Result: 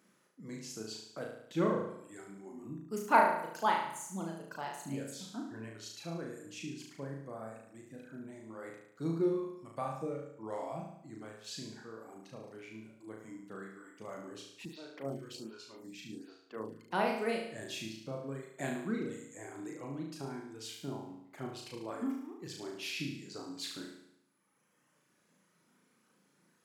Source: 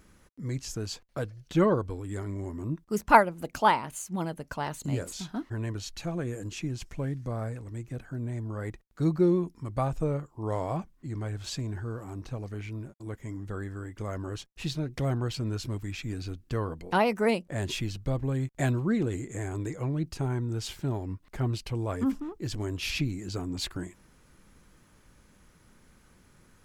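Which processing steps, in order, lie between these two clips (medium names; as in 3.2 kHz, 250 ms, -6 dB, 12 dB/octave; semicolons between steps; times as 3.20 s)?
reverb removal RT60 1.8 s; high-pass 170 Hz 24 dB/octave; flutter echo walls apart 6.2 m, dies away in 0.75 s; 14.65–16.91 s: lamp-driven phase shifter 1.3 Hz; trim -8.5 dB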